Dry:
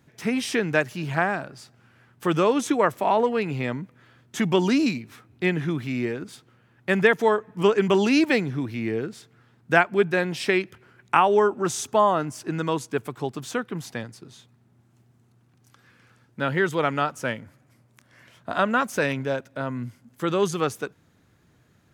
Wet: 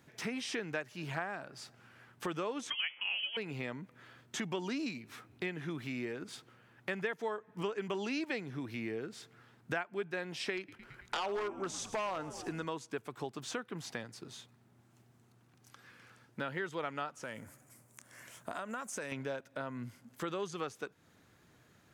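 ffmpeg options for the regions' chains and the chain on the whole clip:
-filter_complex "[0:a]asettb=1/sr,asplit=3[a][b][c];[a]atrim=end=2.704[d];[b]atrim=start=2.7:end=3.37,asetpts=PTS-STARTPTS,afade=t=in:d=0.004:c=qsin,afade=t=out:st=0.666:d=0.004:c=qsin,aemphasis=mode=production:type=riaa,bandreject=f=128.8:t=h:w=4,bandreject=f=257.6:t=h:w=4,bandreject=f=386.4:t=h:w=4,bandreject=f=515.2:t=h:w=4,bandreject=f=644:t=h:w=4,bandreject=f=772.8:t=h:w=4,bandreject=f=901.6:t=h:w=4,bandreject=f=1.0304k:t=h:w=4,bandreject=f=1.1592k:t=h:w=4,bandreject=f=1.288k:t=h:w=4,bandreject=f=1.4168k:t=h:w=4,bandreject=f=1.5456k:t=h:w=4,lowpass=f=3k:t=q:w=0.5098,lowpass=f=3k:t=q:w=0.6013,lowpass=f=3k:t=q:w=0.9,lowpass=f=3k:t=q:w=2.563,afreqshift=-3500[e];[c]atrim=start=3.366[f];[d][e]acrossfade=d=0.004:c1=hsin:c2=qsin[g];[g][f]acrossfade=d=0.004:c1=qsin:c2=hsin,asettb=1/sr,asplit=3[h][i][j];[h]atrim=end=10.574[k];[i]atrim=start=10.57:end=12.65,asetpts=PTS-STARTPTS,afade=t=in:d=0.004:c=qsin,afade=t=out:st=2.076:d=0.004:c=qsin,asplit=7[l][m][n][o][p][q][r];[m]adelay=110,afreqshift=-78,volume=-18dB[s];[n]adelay=220,afreqshift=-156,volume=-22dB[t];[o]adelay=330,afreqshift=-234,volume=-26dB[u];[p]adelay=440,afreqshift=-312,volume=-30dB[v];[q]adelay=550,afreqshift=-390,volume=-34.1dB[w];[r]adelay=660,afreqshift=-468,volume=-38.1dB[x];[l][s][t][u][v][w][x]amix=inputs=7:normalize=0,atrim=end_sample=91728,aeval=exprs='0.188*(abs(mod(val(0)/0.188+3,4)-2)-1)':c=same[y];[j]atrim=start=12.646[z];[k][y]acrossfade=d=0.004:c1=hsin:c2=qsin[aa];[aa][z]acrossfade=d=0.004:c1=qsin:c2=hsin,asettb=1/sr,asplit=3[ab][ac][ad];[ab]atrim=end=17.234[ae];[ac]atrim=start=17.23:end=19.12,asetpts=PTS-STARTPTS,afade=t=in:d=0.004:c=qsin,afade=t=out:st=1.886:d=0.004:c=qsin,highshelf=f=5.8k:t=q:w=1.5:g=10.5,acompressor=threshold=-30dB:ratio=4:attack=3.2:release=140:knee=1:detection=peak[af];[ad]atrim=start=19.116[ag];[ae][af]acrossfade=d=0.004:c1=hsin:c2=qsin[ah];[ah][ag]acrossfade=d=0.004:c1=qsin:c2=hsin,acrossover=split=8000[ai][aj];[aj]acompressor=threshold=-57dB:ratio=4:attack=1:release=60[ak];[ai][ak]amix=inputs=2:normalize=0,lowshelf=f=250:g=-8,acompressor=threshold=-39dB:ratio=3"

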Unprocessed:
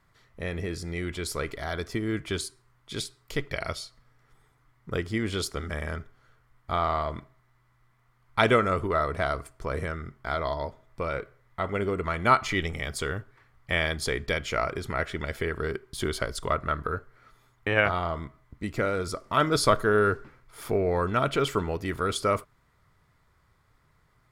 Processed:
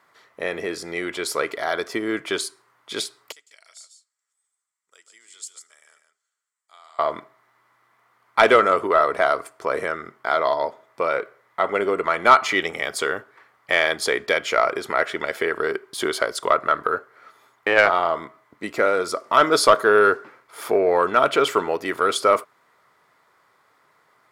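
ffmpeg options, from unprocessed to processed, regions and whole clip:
-filter_complex "[0:a]asettb=1/sr,asplit=3[a][b][c];[a]atrim=end=3.324[d];[b]atrim=start=3.32:end=6.99,asetpts=PTS-STARTPTS,afade=t=in:d=0.004:c=qsin,afade=t=out:st=3.666:d=0.004:c=qsin,bandpass=f=7.7k:t=q:w=5.7,aecho=1:1:145:0.422,atrim=end_sample=161847[e];[c]atrim=start=6.986[f];[d][e]acrossfade=d=0.004:c1=hsin:c2=qsin[g];[g][f]acrossfade=d=0.004:c1=qsin:c2=hsin,highpass=360,equalizer=f=780:t=o:w=2.9:g=4.5,acontrast=74,volume=-1dB"

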